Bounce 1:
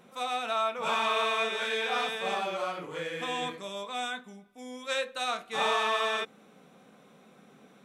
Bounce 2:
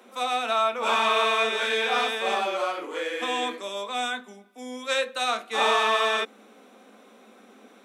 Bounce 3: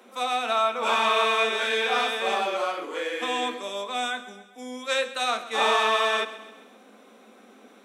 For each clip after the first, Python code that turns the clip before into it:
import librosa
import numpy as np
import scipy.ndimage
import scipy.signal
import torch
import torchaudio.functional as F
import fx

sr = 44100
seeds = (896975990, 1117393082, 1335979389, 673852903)

y1 = scipy.signal.sosfilt(scipy.signal.butter(16, 210.0, 'highpass', fs=sr, output='sos'), x)
y1 = y1 * librosa.db_to_amplitude(5.5)
y2 = fx.echo_feedback(y1, sr, ms=132, feedback_pct=49, wet_db=-15.5)